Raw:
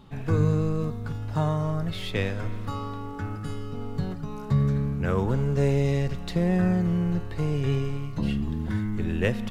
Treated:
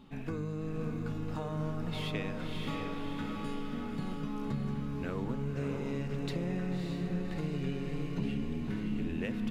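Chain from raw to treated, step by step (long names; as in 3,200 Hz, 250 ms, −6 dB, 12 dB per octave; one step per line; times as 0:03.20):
graphic EQ with 15 bands 100 Hz −9 dB, 250 Hz +8 dB, 2,500 Hz +5 dB
downward compressor, threshold −27 dBFS, peak gain reduction 10 dB
on a send: feedback delay with all-pass diffusion 597 ms, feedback 54%, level −3 dB
on the sum: level −6.5 dB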